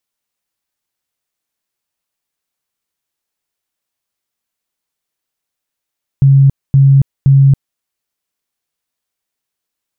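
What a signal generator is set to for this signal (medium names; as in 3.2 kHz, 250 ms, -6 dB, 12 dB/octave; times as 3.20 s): tone bursts 137 Hz, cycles 38, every 0.52 s, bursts 3, -3.5 dBFS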